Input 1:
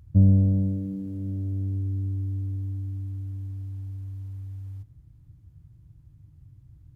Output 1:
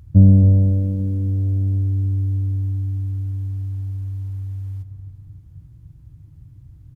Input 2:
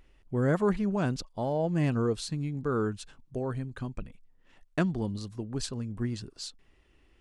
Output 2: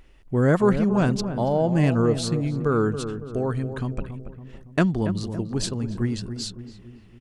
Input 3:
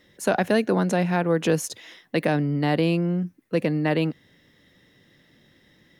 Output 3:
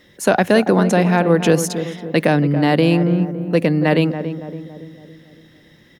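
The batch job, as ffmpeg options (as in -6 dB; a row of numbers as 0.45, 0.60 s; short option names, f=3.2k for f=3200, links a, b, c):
-filter_complex "[0:a]asplit=2[a][b];[b]adelay=280,lowpass=f=1.1k:p=1,volume=-9dB,asplit=2[c][d];[d]adelay=280,lowpass=f=1.1k:p=1,volume=0.54,asplit=2[e][f];[f]adelay=280,lowpass=f=1.1k:p=1,volume=0.54,asplit=2[g][h];[h]adelay=280,lowpass=f=1.1k:p=1,volume=0.54,asplit=2[i][j];[j]adelay=280,lowpass=f=1.1k:p=1,volume=0.54,asplit=2[k][l];[l]adelay=280,lowpass=f=1.1k:p=1,volume=0.54[m];[a][c][e][g][i][k][m]amix=inputs=7:normalize=0,volume=7dB"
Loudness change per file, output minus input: +8.0, +7.5, +7.0 LU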